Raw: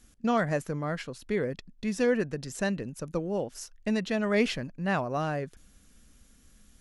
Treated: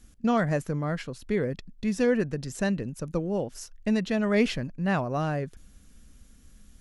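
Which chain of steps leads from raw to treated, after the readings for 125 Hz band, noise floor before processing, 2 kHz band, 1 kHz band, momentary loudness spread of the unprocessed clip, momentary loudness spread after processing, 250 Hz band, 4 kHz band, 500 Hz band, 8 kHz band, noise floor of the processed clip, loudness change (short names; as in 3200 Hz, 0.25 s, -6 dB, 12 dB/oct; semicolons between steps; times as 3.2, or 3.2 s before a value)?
+4.5 dB, -60 dBFS, 0.0 dB, +0.5 dB, 9 LU, 8 LU, +3.5 dB, 0.0 dB, +1.0 dB, 0.0 dB, -55 dBFS, +2.0 dB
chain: low shelf 230 Hz +6.5 dB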